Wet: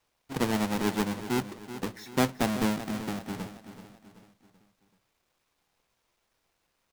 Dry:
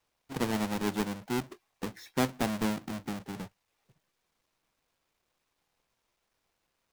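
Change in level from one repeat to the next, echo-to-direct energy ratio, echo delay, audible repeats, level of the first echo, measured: -7.0 dB, -11.5 dB, 382 ms, 4, -12.5 dB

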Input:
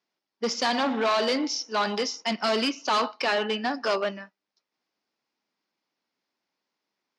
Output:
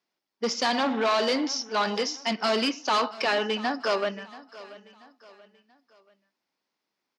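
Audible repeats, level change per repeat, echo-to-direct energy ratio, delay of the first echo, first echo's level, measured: 3, -8.0 dB, -18.0 dB, 683 ms, -18.5 dB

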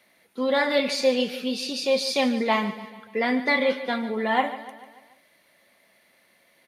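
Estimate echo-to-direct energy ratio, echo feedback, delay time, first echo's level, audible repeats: -12.5 dB, 52%, 146 ms, -14.0 dB, 4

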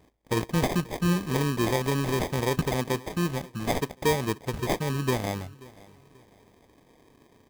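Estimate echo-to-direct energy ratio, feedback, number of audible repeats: -21.5 dB, 34%, 2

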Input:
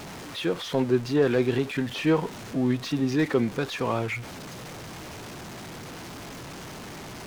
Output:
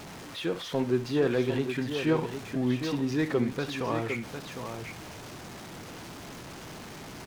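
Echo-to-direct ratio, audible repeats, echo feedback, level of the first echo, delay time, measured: -7.0 dB, 2, no regular repeats, -14.5 dB, 64 ms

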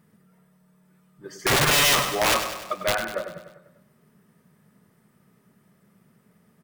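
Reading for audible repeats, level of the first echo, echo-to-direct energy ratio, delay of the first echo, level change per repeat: 6, -9.0 dB, -7.5 dB, 99 ms, -5.0 dB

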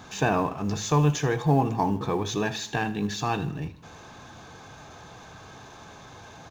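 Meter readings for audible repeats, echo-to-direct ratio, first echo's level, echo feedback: 3, -16.0 dB, -17.0 dB, 50%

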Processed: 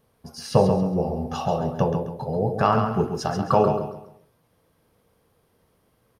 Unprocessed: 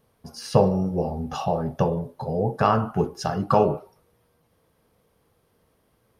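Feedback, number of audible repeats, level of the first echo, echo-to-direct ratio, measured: 32%, 3, -7.0 dB, -6.5 dB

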